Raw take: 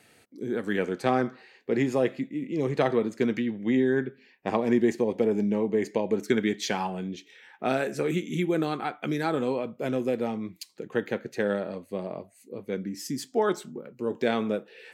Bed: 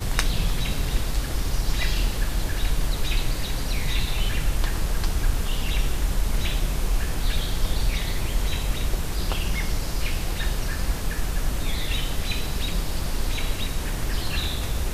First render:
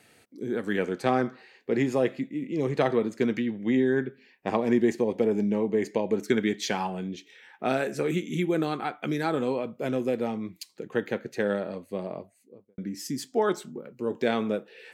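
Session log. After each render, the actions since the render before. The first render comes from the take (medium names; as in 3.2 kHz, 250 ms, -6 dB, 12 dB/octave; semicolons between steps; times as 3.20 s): 12.10–12.78 s: studio fade out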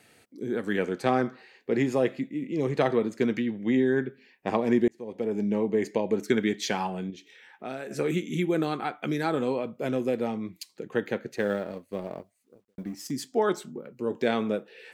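4.88–5.56 s: fade in; 7.10–7.91 s: compression 1.5:1, threshold -49 dBFS; 11.36–13.11 s: companding laws mixed up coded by A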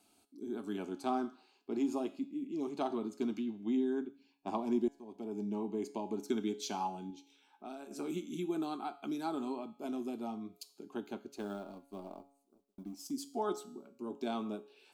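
static phaser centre 500 Hz, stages 6; feedback comb 140 Hz, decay 0.63 s, harmonics all, mix 60%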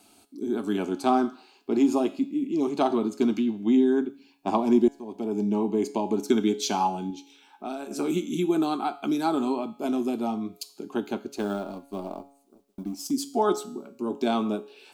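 trim +12 dB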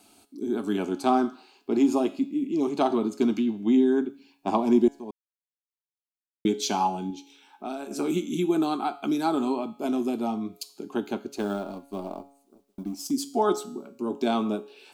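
5.11–6.45 s: mute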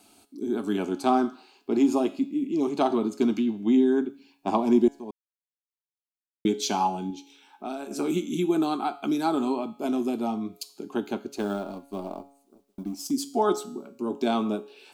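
no audible change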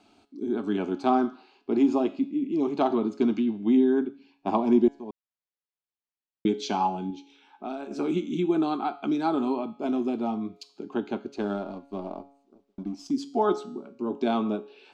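distance through air 160 m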